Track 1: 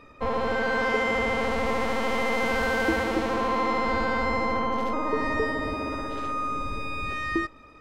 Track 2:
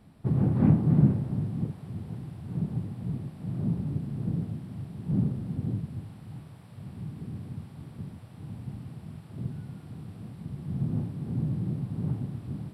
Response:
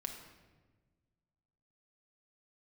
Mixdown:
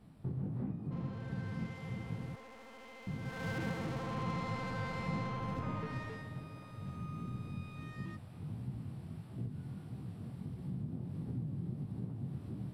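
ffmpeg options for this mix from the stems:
-filter_complex "[0:a]asoftclip=type=tanh:threshold=-25.5dB,adelay=700,volume=-11.5dB,afade=t=in:st=3.21:d=0.29:silence=0.298538,afade=t=out:st=5.73:d=0.61:silence=0.316228[a];[1:a]lowshelf=f=390:g=6.5,acompressor=threshold=-27dB:ratio=16,flanger=delay=15.5:depth=7.6:speed=1.5,volume=-2dB,asplit=3[b][c][d];[b]atrim=end=2.36,asetpts=PTS-STARTPTS,afade=t=out:st=2.356:d=0.004:c=hsin[e];[c]atrim=start=2.36:end=3.07,asetpts=PTS-STARTPTS,volume=0[f];[d]atrim=start=3.07,asetpts=PTS-STARTPTS,afade=t=in:d=0.004:c=hsin[g];[e][f][g]concat=n=3:v=0:a=1[h];[a][h]amix=inputs=2:normalize=0,lowshelf=f=240:g=-5"

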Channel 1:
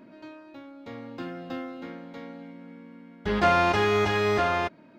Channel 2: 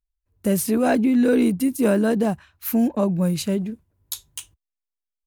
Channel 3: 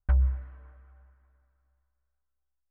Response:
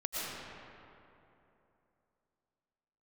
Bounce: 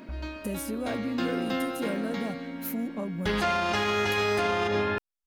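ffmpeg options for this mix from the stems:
-filter_complex "[0:a]highshelf=f=2k:g=9,volume=2dB,asplit=2[a][b];[b]volume=-9.5dB[c];[1:a]acompressor=threshold=-32dB:ratio=2.5,volume=-3.5dB[d];[2:a]volume=-16dB,asplit=2[e][f];[f]volume=-12dB[g];[3:a]atrim=start_sample=2205[h];[c][g]amix=inputs=2:normalize=0[i];[i][h]afir=irnorm=-1:irlink=0[j];[a][d][e][j]amix=inputs=4:normalize=0,alimiter=limit=-17.5dB:level=0:latency=1:release=83"

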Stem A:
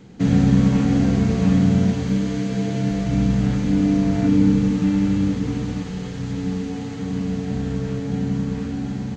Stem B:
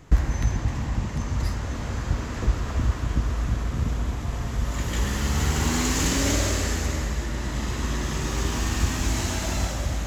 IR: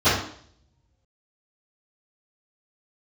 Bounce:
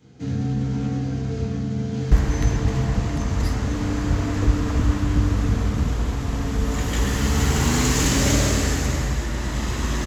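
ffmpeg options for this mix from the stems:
-filter_complex "[0:a]highshelf=f=3.8k:g=10,alimiter=limit=-14.5dB:level=0:latency=1:release=43,volume=-14dB,asplit=2[a][b];[b]volume=-13.5dB[c];[1:a]adelay=2000,volume=3dB[d];[2:a]atrim=start_sample=2205[e];[c][e]afir=irnorm=-1:irlink=0[f];[a][d][f]amix=inputs=3:normalize=0"

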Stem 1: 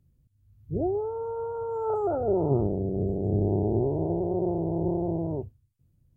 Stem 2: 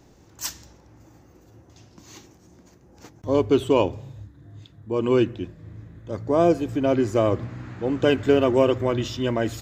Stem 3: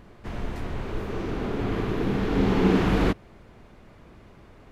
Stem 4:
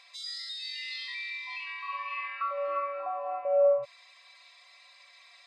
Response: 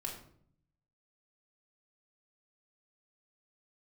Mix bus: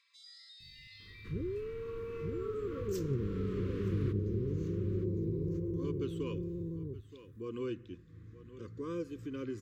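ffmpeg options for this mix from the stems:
-filter_complex "[0:a]bass=f=250:g=6,treble=f=4k:g=9,adelay=600,volume=-2.5dB,asplit=2[a][b];[b]volume=-3dB[c];[1:a]adelay=2500,volume=-9.5dB,asplit=2[d][e];[e]volume=-21.5dB[f];[2:a]adelay=1000,volume=-11.5dB,asplit=2[g][h];[h]volume=-11dB[i];[3:a]volume=-16dB[j];[c][f][i]amix=inputs=3:normalize=0,aecho=0:1:922:1[k];[a][d][g][j][k]amix=inputs=5:normalize=0,asuperstop=centerf=730:order=12:qfactor=1.4,acompressor=threshold=-51dB:ratio=1.5"

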